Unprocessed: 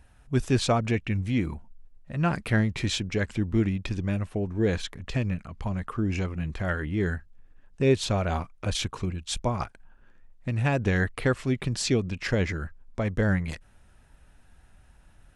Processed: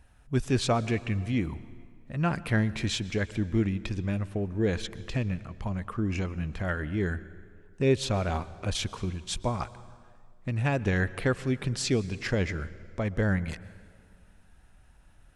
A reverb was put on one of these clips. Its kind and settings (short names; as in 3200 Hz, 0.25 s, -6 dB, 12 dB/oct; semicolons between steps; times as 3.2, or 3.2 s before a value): plate-style reverb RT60 2 s, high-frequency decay 0.75×, pre-delay 0.105 s, DRR 17 dB; gain -2 dB